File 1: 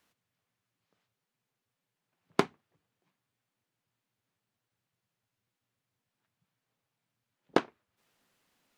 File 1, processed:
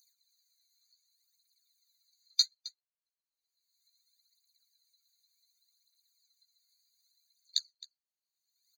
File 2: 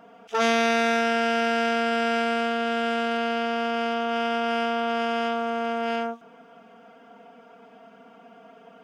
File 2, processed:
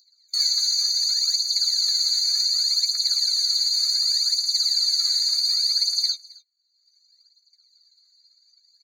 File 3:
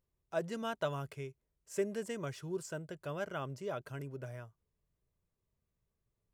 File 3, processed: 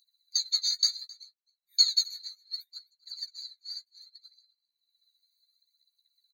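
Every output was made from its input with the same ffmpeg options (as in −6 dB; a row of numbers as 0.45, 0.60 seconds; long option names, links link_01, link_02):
-filter_complex "[0:a]afftfilt=real='real(if(lt(b,736),b+184*(1-2*mod(floor(b/184),2)),b),0)':imag='imag(if(lt(b,736),b+184*(1-2*mod(floor(b/184),2)),b),0)':win_size=2048:overlap=0.75,agate=range=-29dB:threshold=-39dB:ratio=16:detection=peak,afwtdn=0.0158,aderivative,acompressor=threshold=-39dB:ratio=4,highpass=frequency=3000:width_type=q:width=7.5,aphaser=in_gain=1:out_gain=1:delay=2.9:decay=0.78:speed=0.67:type=triangular,acompressor=mode=upward:threshold=-52dB:ratio=2.5,asplit=2[link_01][link_02];[link_02]adelay=14,volume=-7dB[link_03];[link_01][link_03]amix=inputs=2:normalize=0,asplit=2[link_04][link_05];[link_05]aecho=0:1:264:0.0708[link_06];[link_04][link_06]amix=inputs=2:normalize=0,alimiter=level_in=18.5dB:limit=-1dB:release=50:level=0:latency=1,afftfilt=real='re*eq(mod(floor(b*sr/1024/1200),2),1)':imag='im*eq(mod(floor(b*sr/1024/1200),2),1)':win_size=1024:overlap=0.75,volume=-8dB"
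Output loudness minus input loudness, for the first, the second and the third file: +1.5, +5.5, +12.5 LU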